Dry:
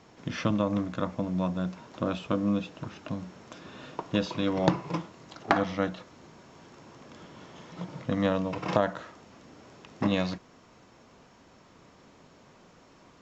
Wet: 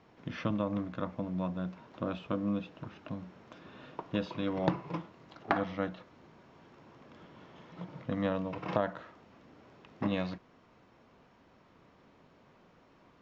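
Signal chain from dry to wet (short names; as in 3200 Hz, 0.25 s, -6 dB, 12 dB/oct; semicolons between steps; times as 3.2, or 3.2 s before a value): LPF 3500 Hz 12 dB/oct; gain -5.5 dB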